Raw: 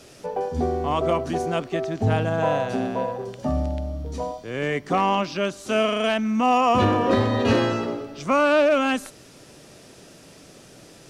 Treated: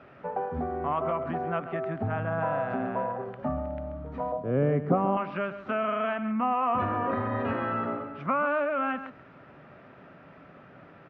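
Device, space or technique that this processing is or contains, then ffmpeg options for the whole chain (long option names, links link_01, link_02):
bass amplifier: -filter_complex "[0:a]acompressor=threshold=-24dB:ratio=5,highpass=70,equalizer=frequency=74:width_type=q:width=4:gain=-5,equalizer=frequency=120:width_type=q:width=4:gain=-4,equalizer=frequency=210:width_type=q:width=4:gain=-3,equalizer=frequency=330:width_type=q:width=4:gain=-7,equalizer=frequency=460:width_type=q:width=4:gain=-7,equalizer=frequency=1300:width_type=q:width=4:gain=6,lowpass=frequency=2100:width=0.5412,lowpass=frequency=2100:width=1.3066,asettb=1/sr,asplit=3[link_01][link_02][link_03];[link_01]atrim=end=4.324[link_04];[link_02]atrim=start=4.32:end=5.17,asetpts=PTS-STARTPTS,afade=type=in:duration=0.004:curve=qsin,afade=type=out:start_time=0.846:duration=0.004:curve=qsin,equalizer=frequency=125:width_type=o:width=1:gain=11,equalizer=frequency=250:width_type=o:width=1:gain=5,equalizer=frequency=500:width_type=o:width=1:gain=10,equalizer=frequency=1000:width_type=o:width=1:gain=-3,equalizer=frequency=2000:width_type=o:width=1:gain=-11,equalizer=frequency=4000:width_type=o:width=1:gain=-3[link_05];[link_03]atrim=start=5.166[link_06];[link_04][link_05]acrossfade=duration=0.004:curve1=hsin:curve2=qsin[link_07];[link_07][link_06]acrossfade=duration=0.004:curve1=qsin:curve2=hsin,aecho=1:1:134:0.237"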